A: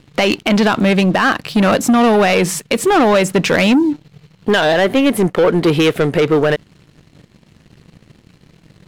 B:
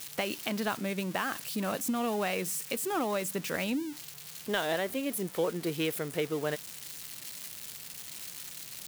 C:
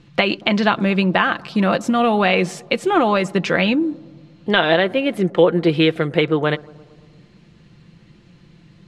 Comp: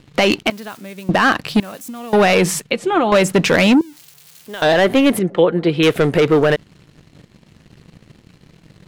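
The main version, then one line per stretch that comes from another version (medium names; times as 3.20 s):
A
0.50–1.09 s: from B
1.60–2.13 s: from B
2.71–3.12 s: from C
3.81–4.62 s: from B
5.19–5.83 s: from C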